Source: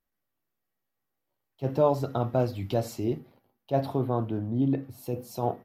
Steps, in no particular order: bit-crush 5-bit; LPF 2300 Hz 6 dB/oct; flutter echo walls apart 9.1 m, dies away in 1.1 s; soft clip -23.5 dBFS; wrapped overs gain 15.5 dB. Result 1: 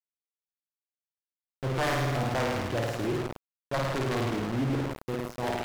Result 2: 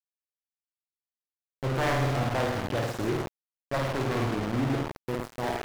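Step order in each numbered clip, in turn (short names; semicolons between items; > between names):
wrapped overs > flutter echo > bit-crush > LPF > soft clip; wrapped overs > soft clip > flutter echo > bit-crush > LPF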